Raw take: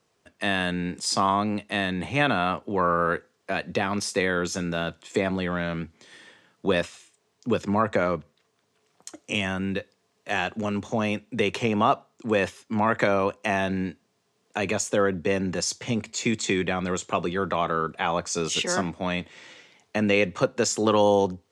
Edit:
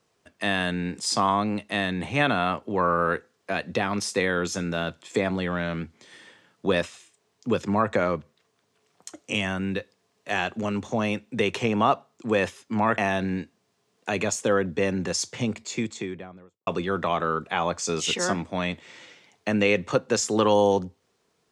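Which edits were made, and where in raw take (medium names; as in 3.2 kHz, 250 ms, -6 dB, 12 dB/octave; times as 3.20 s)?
12.98–13.46 s: delete
15.82–17.15 s: studio fade out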